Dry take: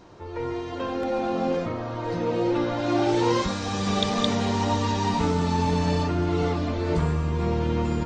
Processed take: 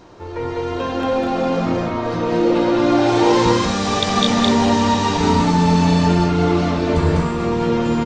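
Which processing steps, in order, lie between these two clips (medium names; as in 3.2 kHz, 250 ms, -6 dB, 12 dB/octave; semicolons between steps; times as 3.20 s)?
hum notches 50/100/150/200 Hz; on a send: loudspeakers at several distances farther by 69 m -1 dB, 81 m -5 dB; on the sum: trim +5.5 dB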